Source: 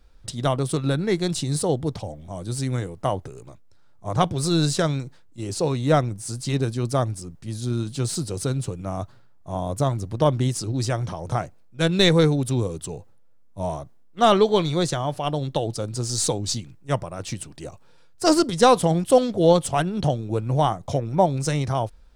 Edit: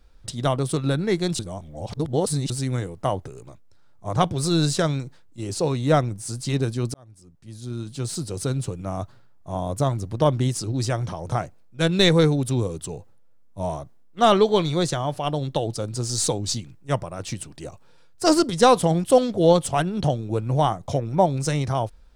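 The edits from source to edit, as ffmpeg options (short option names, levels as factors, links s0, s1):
-filter_complex "[0:a]asplit=4[s0][s1][s2][s3];[s0]atrim=end=1.392[s4];[s1]atrim=start=1.388:end=2.502,asetpts=PTS-STARTPTS,areverse[s5];[s2]atrim=start=2.498:end=6.94,asetpts=PTS-STARTPTS,afade=t=out:st=4.438:d=0.004:c=hsin[s6];[s3]atrim=start=6.94,asetpts=PTS-STARTPTS,afade=t=in:d=1.61[s7];[s4][s5]acrossfade=d=0.004:c1=hsin:c2=hsin[s8];[s6][s7]concat=n=2:v=0:a=1[s9];[s8][s9]acrossfade=d=0.004:c1=hsin:c2=hsin"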